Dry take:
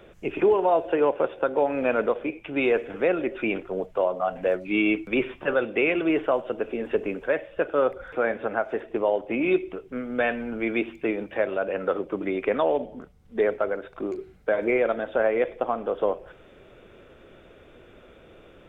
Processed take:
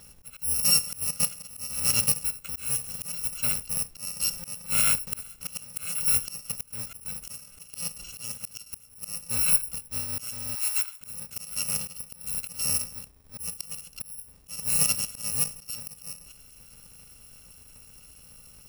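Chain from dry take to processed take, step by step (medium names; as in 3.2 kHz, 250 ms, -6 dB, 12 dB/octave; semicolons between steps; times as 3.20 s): bit-reversed sample order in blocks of 128 samples; 10.55–11.01 s: elliptic high-pass 890 Hz, stop band 60 dB; slow attack 341 ms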